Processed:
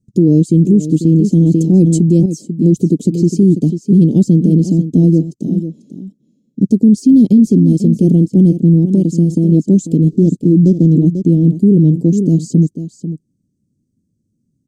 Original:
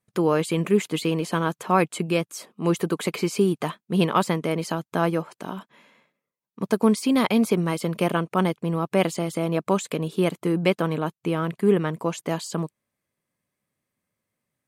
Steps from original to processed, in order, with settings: 10.09–10.93 median filter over 25 samples; Chebyshev band-stop 290–6700 Hz, order 3; bell 9200 Hz +4 dB 0.86 oct; 8.79–9.52 compressor, threshold -28 dBFS, peak gain reduction 6 dB; air absorption 210 m; echo 0.493 s -12 dB; maximiser +21.5 dB; 1.46–2.26 sustainer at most 34 dB/s; gain -1 dB

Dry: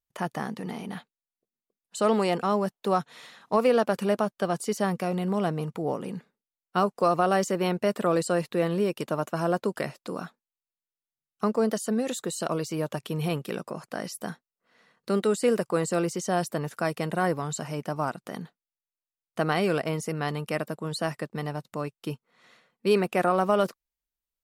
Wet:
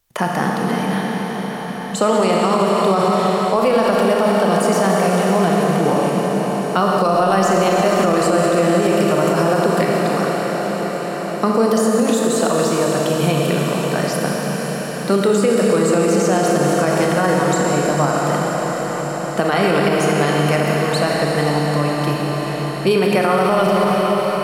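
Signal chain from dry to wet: de-hum 51.48 Hz, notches 8; on a send: diffused feedback echo 0.559 s, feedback 69%, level -11.5 dB; on the sum: Schroeder reverb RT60 4 s, combs from 27 ms, DRR -1.5 dB; maximiser +15 dB; three-band squash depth 40%; gain -5.5 dB

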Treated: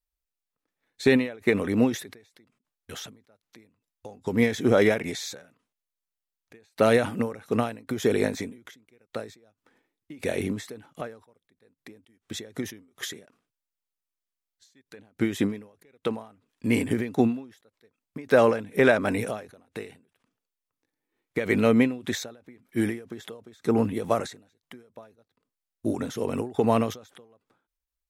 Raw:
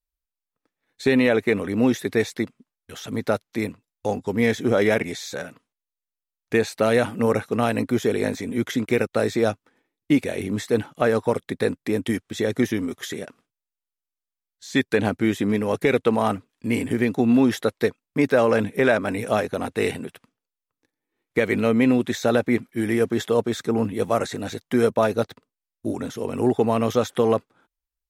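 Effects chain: ending taper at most 130 dB/s

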